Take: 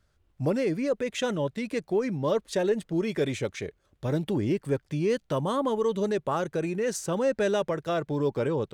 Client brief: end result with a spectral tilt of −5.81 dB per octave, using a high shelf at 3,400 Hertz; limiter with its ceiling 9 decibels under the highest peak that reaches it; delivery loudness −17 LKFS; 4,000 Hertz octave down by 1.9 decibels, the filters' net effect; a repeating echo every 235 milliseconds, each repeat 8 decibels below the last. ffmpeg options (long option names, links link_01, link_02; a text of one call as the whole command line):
ffmpeg -i in.wav -af "highshelf=frequency=3400:gain=5,equalizer=frequency=4000:width_type=o:gain=-6,alimiter=limit=-23.5dB:level=0:latency=1,aecho=1:1:235|470|705|940|1175:0.398|0.159|0.0637|0.0255|0.0102,volume=14.5dB" out.wav